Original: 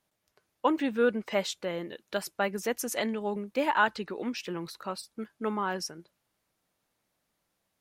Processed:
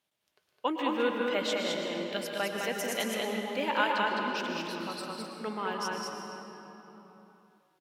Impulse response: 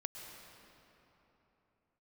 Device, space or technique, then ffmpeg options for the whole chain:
stadium PA: -filter_complex "[0:a]highpass=f=140:p=1,equalizer=f=3100:t=o:w=0.93:g=7.5,aecho=1:1:151.6|209.9:0.251|0.708[s0];[1:a]atrim=start_sample=2205[s1];[s0][s1]afir=irnorm=-1:irlink=0,volume=0.841"

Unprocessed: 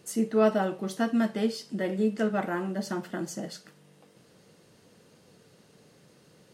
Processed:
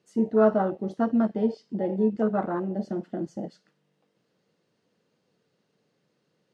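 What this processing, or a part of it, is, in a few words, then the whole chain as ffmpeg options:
over-cleaned archive recording: -filter_complex "[0:a]asettb=1/sr,asplit=3[s0][s1][s2];[s0]atrim=end=1.344[s3];[s1]atrim=start=1.34:end=2.1,asetpts=PTS-STARTPTS,afade=t=in:d=0.004:c=qsin,afade=t=out:st=0.756:d=0.004:c=qsin,lowpass=7600[s4];[s2]atrim=start=2.096[s5];[s3][s4]acrossfade=d=0.004:c1=hsin:c2=qsin[s6];[s6][s5]acrossfade=d=0.004:c1=qsin:c2=hsin,highpass=130,lowpass=5500,afwtdn=0.0282,volume=1.41"

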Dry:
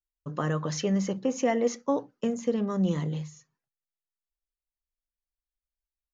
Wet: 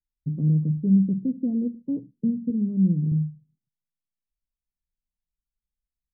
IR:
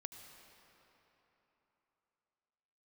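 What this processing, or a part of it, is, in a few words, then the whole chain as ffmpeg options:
the neighbour's flat through the wall: -filter_complex "[0:a]lowpass=f=270:w=0.5412,lowpass=f=270:w=1.3066,equalizer=f=160:t=o:w=0.85:g=5.5,asettb=1/sr,asplit=3[s0][s1][s2];[s0]atrim=end=2.504[s3];[s1]atrim=start=2.5:end=3.12,asetpts=PTS-STARTPTS,afade=t=in:d=0.004:c=qsin,afade=t=out:st=0.616:d=0.004:c=qsin,highpass=f=180:p=1[s4];[s2]atrim=start=3.116[s5];[s3][s4]acrossfade=d=0.004:c1=hsin:c2=qsin[s6];[s6][s5]acrossfade=d=0.004:c1=qsin:c2=hsin,volume=1.78"

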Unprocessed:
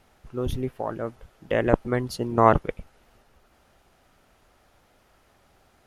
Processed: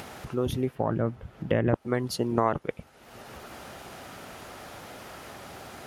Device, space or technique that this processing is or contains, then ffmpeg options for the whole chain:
upward and downward compression: -filter_complex "[0:a]highpass=100,asettb=1/sr,asplit=3[s0][s1][s2];[s0]atrim=end=0.754[s3];[s1]atrim=start=0.75:end=1.74,asetpts=PTS-STARTPTS,afade=t=in:d=0.004:c=qsin,afade=t=out:st=0.986:d=0.004:c=qsin,bass=f=250:g=12,treble=f=4000:g=-9[s4];[s2]atrim=start=1.736[s5];[s3][s4]acrossfade=d=0.004:c1=hsin:c2=qsin[s6];[s6][s5]acrossfade=d=0.004:c1=qsin:c2=hsin,acompressor=mode=upward:threshold=0.0282:ratio=2.5,acompressor=threshold=0.0631:ratio=4,volume=1.33"

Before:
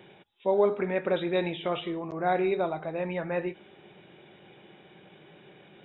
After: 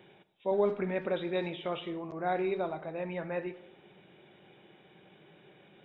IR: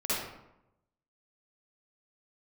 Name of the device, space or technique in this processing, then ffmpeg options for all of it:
saturated reverb return: -filter_complex "[0:a]asettb=1/sr,asplit=3[s0][s1][s2];[s0]atrim=end=0.514[s3];[s1]atrim=start=0.51:end=1.07,asetpts=PTS-STARTPTS,afade=t=in:d=0.004:c=qsin,afade=t=out:st=0.556:d=0.004:c=qsin,bass=f=250:g=6,treble=f=4000:g=6[s4];[s2]atrim=start=1.066[s5];[s3][s4]acrossfade=d=0.004:c1=hsin:c2=qsin[s6];[s6][s5]acrossfade=d=0.004:c1=qsin:c2=hsin,asplit=2[s7][s8];[1:a]atrim=start_sample=2205[s9];[s8][s9]afir=irnorm=-1:irlink=0,asoftclip=type=tanh:threshold=0.158,volume=0.0794[s10];[s7][s10]amix=inputs=2:normalize=0,volume=0.531"

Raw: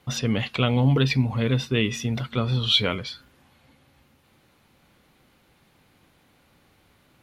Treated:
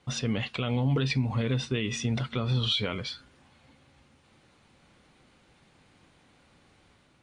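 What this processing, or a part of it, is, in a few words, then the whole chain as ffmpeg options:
low-bitrate web radio: -af "dynaudnorm=f=690:g=3:m=1.5,alimiter=limit=0.2:level=0:latency=1:release=108,volume=0.668" -ar 22050 -c:a libmp3lame -b:a 48k

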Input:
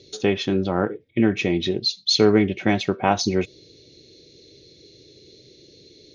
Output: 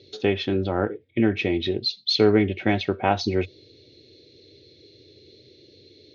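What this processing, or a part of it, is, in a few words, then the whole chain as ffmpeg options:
guitar cabinet: -af "highpass=83,equalizer=f=92:t=q:w=4:g=7,equalizer=f=170:t=q:w=4:g=-9,equalizer=f=1100:t=q:w=4:g=-5,lowpass=f=4500:w=0.5412,lowpass=f=4500:w=1.3066,volume=0.891"

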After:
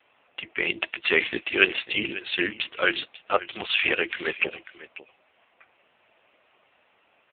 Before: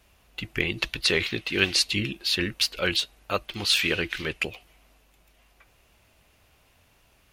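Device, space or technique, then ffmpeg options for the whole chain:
satellite phone: -af "highpass=360,lowpass=3100,aecho=1:1:544:0.15,volume=2.24" -ar 8000 -c:a libopencore_amrnb -b:a 5900

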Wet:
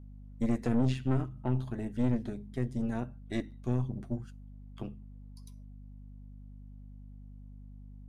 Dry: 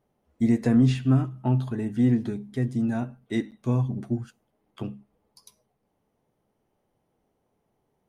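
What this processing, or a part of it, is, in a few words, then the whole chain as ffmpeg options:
valve amplifier with mains hum: -af "aeval=exprs='(tanh(10*val(0)+0.8)-tanh(0.8))/10':c=same,aeval=exprs='val(0)+0.00631*(sin(2*PI*50*n/s)+sin(2*PI*2*50*n/s)/2+sin(2*PI*3*50*n/s)/3+sin(2*PI*4*50*n/s)/4+sin(2*PI*5*50*n/s)/5)':c=same,volume=0.708"

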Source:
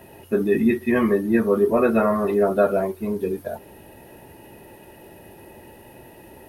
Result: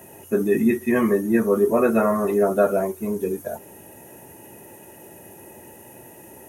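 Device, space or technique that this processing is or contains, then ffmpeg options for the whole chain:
budget condenser microphone: -af "highpass=95,highshelf=f=5400:t=q:w=3:g=6.5"

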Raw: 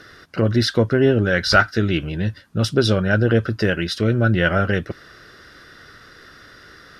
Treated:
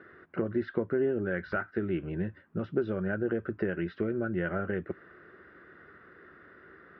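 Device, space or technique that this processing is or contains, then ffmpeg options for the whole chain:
bass amplifier: -af "acompressor=threshold=0.1:ratio=5,highpass=81,equalizer=f=120:t=q:w=4:g=-9,equalizer=f=180:t=q:w=4:g=4,equalizer=f=370:t=q:w=4:g=8,lowpass=f=2100:w=0.5412,lowpass=f=2100:w=1.3066,volume=0.376"

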